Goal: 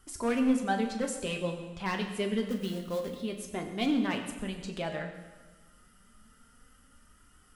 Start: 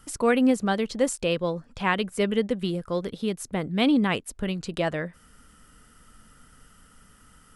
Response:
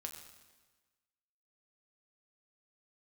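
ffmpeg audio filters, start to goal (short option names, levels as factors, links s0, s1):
-filter_complex "[0:a]asettb=1/sr,asplit=3[s0][s1][s2];[s0]atrim=end=2.474[s3];[s1]atrim=start=2.47:end=3.21,asetpts=PTS-STARTPTS,afade=t=in:d=0.004:c=qsin,afade=t=out:st=0.736:d=0.004:c=qsin,acrusher=bits=4:mode=log:mix=0:aa=0.000001[s4];[s2]atrim=start=3.206[s5];[s3][s4]acrossfade=d=0.004:c1=hsin:c2=qsin[s6];[s6][s5]acrossfade=d=0.004:c1=qsin:c2=hsin,volume=7.08,asoftclip=hard,volume=0.141,flanger=delay=2.6:depth=3.4:regen=44:speed=0.27:shape=triangular[s7];[1:a]atrim=start_sample=2205[s8];[s7][s8]afir=irnorm=-1:irlink=0,volume=1.12"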